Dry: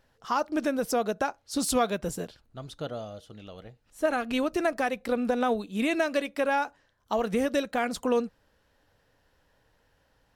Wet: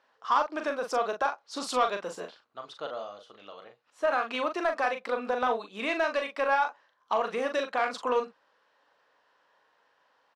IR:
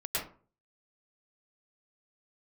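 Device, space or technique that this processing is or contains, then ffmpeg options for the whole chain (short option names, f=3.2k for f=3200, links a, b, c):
intercom: -filter_complex "[0:a]highpass=490,lowpass=4.7k,equalizer=f=1.1k:t=o:w=0.51:g=8,asoftclip=type=tanh:threshold=-16dB,asplit=2[a][b];[b]adelay=40,volume=-6.5dB[c];[a][c]amix=inputs=2:normalize=0"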